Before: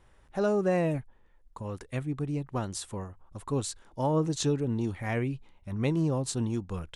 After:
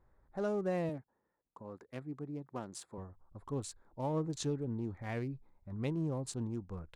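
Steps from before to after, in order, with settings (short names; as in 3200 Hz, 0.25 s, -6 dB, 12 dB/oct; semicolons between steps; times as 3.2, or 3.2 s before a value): Wiener smoothing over 15 samples; 0.89–2.98 HPF 180 Hz 12 dB/oct; gain -8 dB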